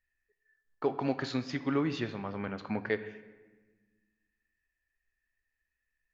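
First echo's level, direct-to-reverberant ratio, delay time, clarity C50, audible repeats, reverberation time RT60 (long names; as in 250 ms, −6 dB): no echo audible, 11.0 dB, no echo audible, 13.5 dB, no echo audible, 1.3 s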